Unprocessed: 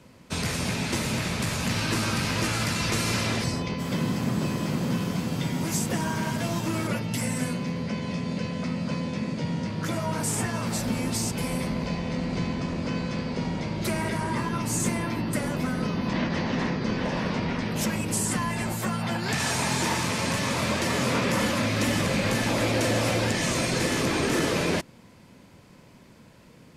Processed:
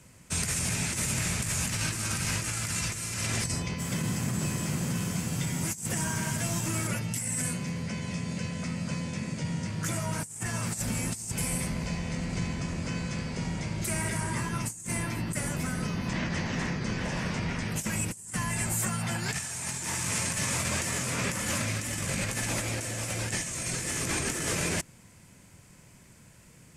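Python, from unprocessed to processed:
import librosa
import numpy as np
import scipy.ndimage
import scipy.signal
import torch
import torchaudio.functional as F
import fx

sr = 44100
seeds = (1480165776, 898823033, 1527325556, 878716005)

y = fx.graphic_eq(x, sr, hz=(250, 500, 1000, 4000, 8000), db=(-8, -7, -6, -8, 10))
y = fx.over_compress(y, sr, threshold_db=-30.0, ratio=-0.5)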